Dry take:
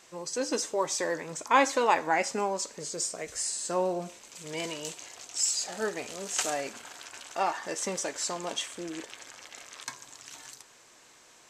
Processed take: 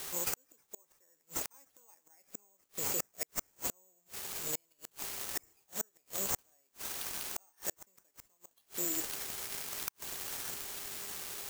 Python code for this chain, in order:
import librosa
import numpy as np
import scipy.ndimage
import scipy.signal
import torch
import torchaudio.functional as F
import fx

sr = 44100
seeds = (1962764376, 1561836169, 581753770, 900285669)

p1 = fx.quant_dither(x, sr, seeds[0], bits=6, dither='triangular')
p2 = x + F.gain(torch.from_numpy(p1), -7.5).numpy()
p3 = fx.dmg_buzz(p2, sr, base_hz=400.0, harmonics=7, level_db=-52.0, tilt_db=-5, odd_only=False)
p4 = (np.kron(p3[::6], np.eye(6)[0]) * 6)[:len(p3)]
p5 = fx.gate_flip(p4, sr, shuts_db=-6.0, range_db=-41)
y = F.gain(torch.from_numpy(p5), -8.0).numpy()